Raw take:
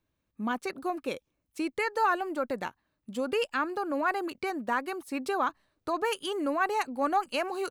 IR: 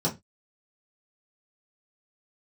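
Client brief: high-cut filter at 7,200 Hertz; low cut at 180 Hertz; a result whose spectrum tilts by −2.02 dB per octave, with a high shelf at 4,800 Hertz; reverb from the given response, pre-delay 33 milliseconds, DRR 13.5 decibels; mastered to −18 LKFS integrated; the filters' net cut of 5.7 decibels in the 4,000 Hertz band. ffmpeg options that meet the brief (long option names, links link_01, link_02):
-filter_complex "[0:a]highpass=180,lowpass=7200,equalizer=frequency=4000:width_type=o:gain=-7,highshelf=frequency=4800:gain=-3,asplit=2[link_01][link_02];[1:a]atrim=start_sample=2205,adelay=33[link_03];[link_02][link_03]afir=irnorm=-1:irlink=0,volume=-23dB[link_04];[link_01][link_04]amix=inputs=2:normalize=0,volume=13.5dB"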